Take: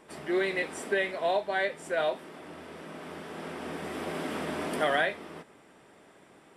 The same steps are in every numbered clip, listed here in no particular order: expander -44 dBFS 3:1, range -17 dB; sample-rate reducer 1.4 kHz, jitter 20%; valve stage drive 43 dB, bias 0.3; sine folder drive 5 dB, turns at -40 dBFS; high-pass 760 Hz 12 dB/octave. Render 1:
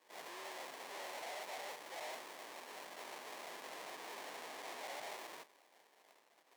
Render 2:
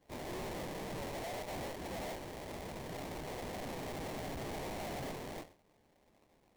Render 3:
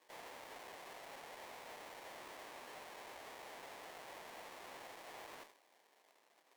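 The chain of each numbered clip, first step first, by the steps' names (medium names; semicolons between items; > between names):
valve stage > sample-rate reducer > sine folder > high-pass > expander; expander > high-pass > valve stage > sine folder > sample-rate reducer; expander > sine folder > sample-rate reducer > high-pass > valve stage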